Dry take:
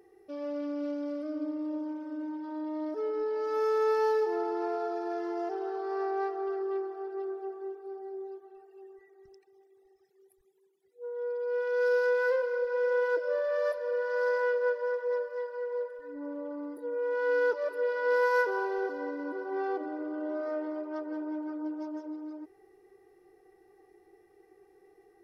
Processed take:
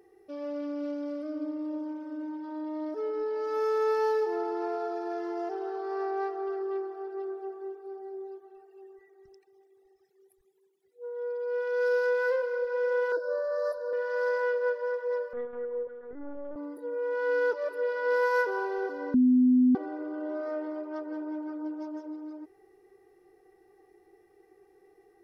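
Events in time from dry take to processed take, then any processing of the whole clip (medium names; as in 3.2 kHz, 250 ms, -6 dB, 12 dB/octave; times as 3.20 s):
13.12–13.93 s: Chebyshev band-stop 1.7–3.8 kHz, order 5
15.33–16.56 s: LPC vocoder at 8 kHz pitch kept
19.14–19.75 s: bleep 252 Hz -17.5 dBFS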